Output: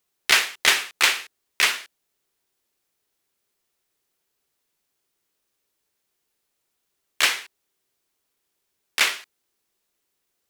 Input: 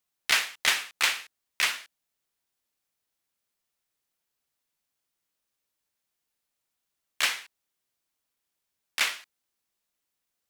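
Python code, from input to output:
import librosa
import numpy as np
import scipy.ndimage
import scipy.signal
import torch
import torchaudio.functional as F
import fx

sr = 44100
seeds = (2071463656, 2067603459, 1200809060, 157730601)

y = fx.peak_eq(x, sr, hz=390.0, db=8.0, octaves=0.48)
y = y * 10.0 ** (6.0 / 20.0)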